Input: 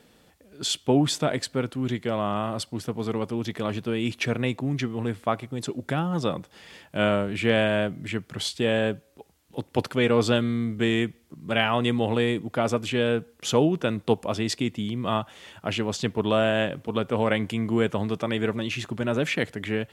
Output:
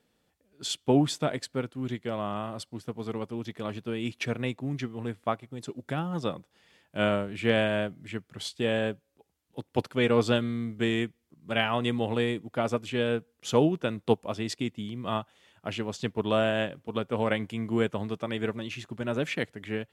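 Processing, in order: upward expansion 1.5:1, over -44 dBFS; trim -1 dB

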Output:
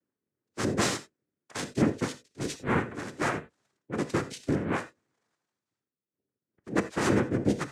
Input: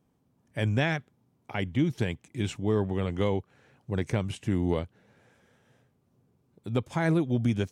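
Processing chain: reverb removal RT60 2 s; noise-vocoded speech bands 3; gated-style reverb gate 110 ms flat, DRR 10 dB; three bands expanded up and down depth 40%

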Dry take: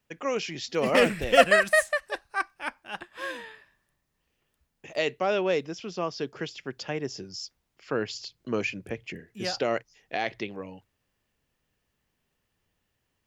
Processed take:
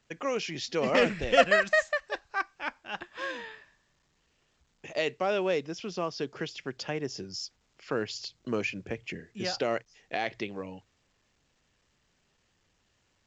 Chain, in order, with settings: in parallel at -2 dB: compression, threshold -35 dBFS, peak gain reduction 22 dB; on the sum: trim -4 dB; A-law 128 kbps 16 kHz

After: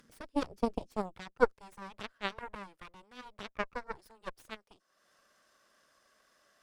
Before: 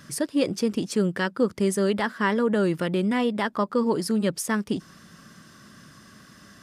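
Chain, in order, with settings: high-pass sweep 220 Hz -> 580 Hz, 0.55–1.75 s; upward compressor, threshold -27 dBFS; Chebyshev shaper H 2 -11 dB, 3 -9 dB, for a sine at -6.5 dBFS; trim -6 dB

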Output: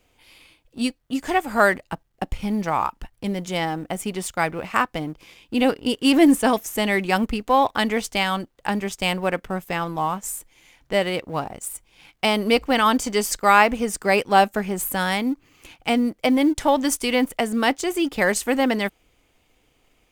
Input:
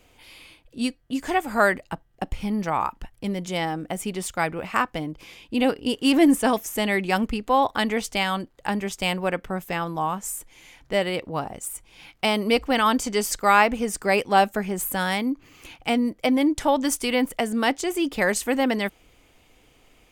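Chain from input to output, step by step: companding laws mixed up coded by A; trim +2.5 dB

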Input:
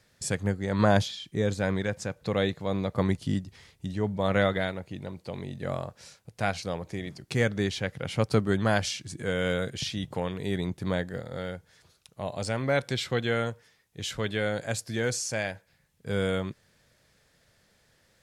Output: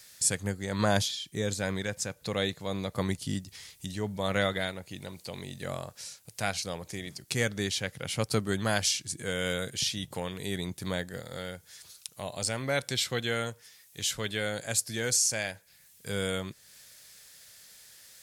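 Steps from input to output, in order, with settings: pre-emphasis filter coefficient 0.8; tape noise reduction on one side only encoder only; trim +9 dB

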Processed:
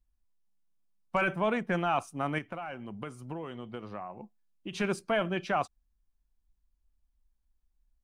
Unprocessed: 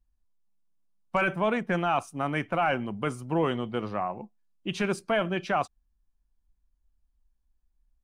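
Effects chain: 2.38–4.73 s: compression 6:1, threshold -34 dBFS, peak gain reduction 12.5 dB; trim -2.5 dB

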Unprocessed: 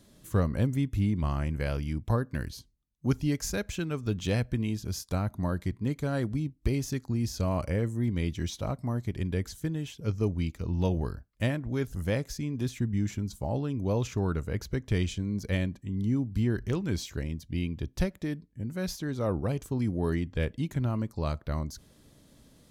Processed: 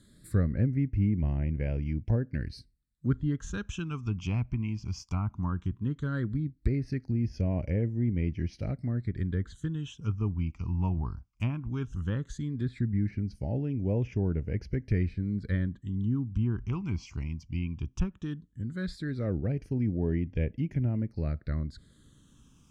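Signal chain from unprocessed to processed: phase shifter stages 8, 0.16 Hz, lowest notch 500–1200 Hz; low-pass that closes with the level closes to 1.8 kHz, closed at -25.5 dBFS

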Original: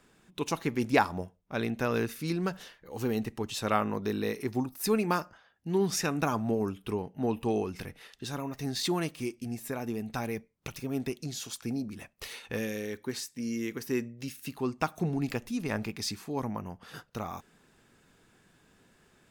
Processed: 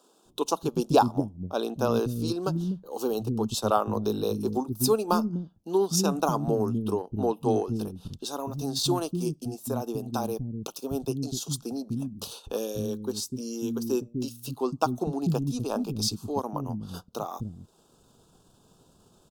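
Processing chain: Butterworth band-stop 2 kHz, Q 0.89; transient shaper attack +2 dB, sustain -7 dB; bands offset in time highs, lows 250 ms, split 270 Hz; trim +5.5 dB

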